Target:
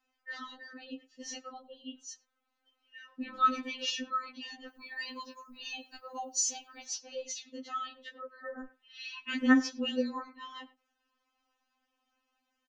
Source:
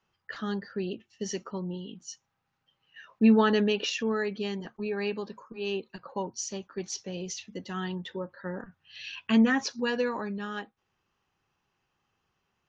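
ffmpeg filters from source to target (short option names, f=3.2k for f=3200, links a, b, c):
-filter_complex "[0:a]asettb=1/sr,asplit=3[a][b][c];[a]atrim=end=4.684[d];[b]atrim=start=4.68:end=6.86,asetpts=PTS-STARTPTS,afade=t=in:d=0.004:c=qsin,afade=t=out:st=2.176:d=0.004:c=qsin,aemphasis=mode=production:type=75fm[e];[c]atrim=start=6.856[f];[d][e]acrossfade=d=0.004:c1=hsin:c2=qsin[g];[g][f]acrossfade=d=0.004:c1=qsin:c2=hsin,asplit=2[h][i];[i]adelay=100,highpass=300,lowpass=3.4k,asoftclip=type=hard:threshold=-21dB,volume=-19dB[j];[h][j]amix=inputs=2:normalize=0,afftfilt=real='re*3.46*eq(mod(b,12),0)':imag='im*3.46*eq(mod(b,12),0)':win_size=2048:overlap=0.75"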